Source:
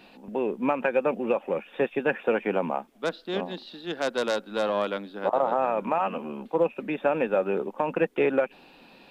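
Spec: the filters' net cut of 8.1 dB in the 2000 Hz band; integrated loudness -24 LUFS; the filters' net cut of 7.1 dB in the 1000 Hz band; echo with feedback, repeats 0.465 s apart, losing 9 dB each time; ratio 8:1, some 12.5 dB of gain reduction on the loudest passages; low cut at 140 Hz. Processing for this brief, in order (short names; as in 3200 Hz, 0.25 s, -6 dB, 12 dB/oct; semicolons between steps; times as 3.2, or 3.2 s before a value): HPF 140 Hz; bell 1000 Hz -8 dB; bell 2000 Hz -8.5 dB; compressor 8:1, threshold -34 dBFS; feedback echo 0.465 s, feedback 35%, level -9 dB; gain +15 dB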